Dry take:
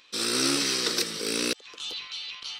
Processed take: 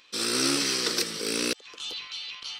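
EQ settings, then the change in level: band-stop 3.8 kHz, Q 23; 0.0 dB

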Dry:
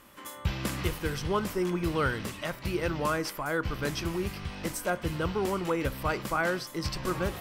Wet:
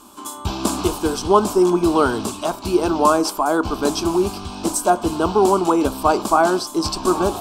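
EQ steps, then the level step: static phaser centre 520 Hz, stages 6; dynamic bell 650 Hz, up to +7 dB, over -47 dBFS, Q 1.1; ten-band graphic EQ 125 Hz +11 dB, 250 Hz +6 dB, 500 Hz +11 dB, 1 kHz +6 dB, 2 kHz +5 dB, 4 kHz +6 dB, 8 kHz +12 dB; +3.5 dB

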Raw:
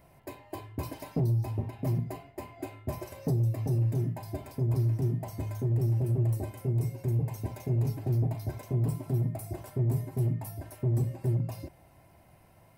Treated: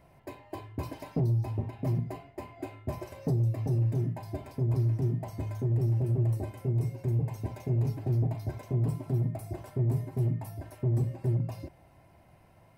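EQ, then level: treble shelf 7.6 kHz -10 dB; 0.0 dB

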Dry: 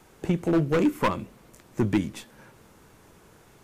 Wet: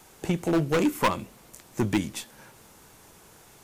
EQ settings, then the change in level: peaking EQ 790 Hz +4 dB 0.75 oct; treble shelf 2.8 kHz +11 dB; -2.0 dB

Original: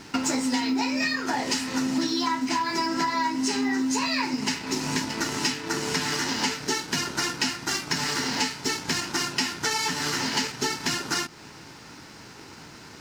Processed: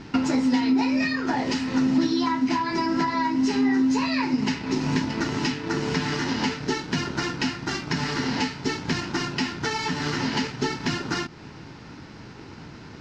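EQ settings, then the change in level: distance through air 200 m; bass shelf 330 Hz +9 dB; treble shelf 5.4 kHz +8.5 dB; 0.0 dB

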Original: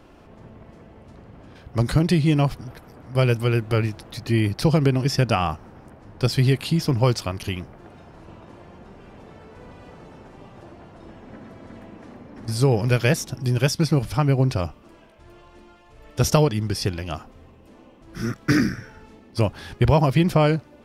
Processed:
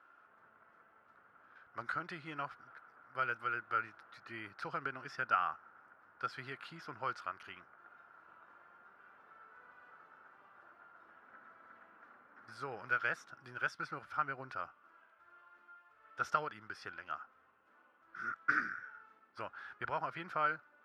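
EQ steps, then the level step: band-pass filter 1.4 kHz, Q 8; +2.0 dB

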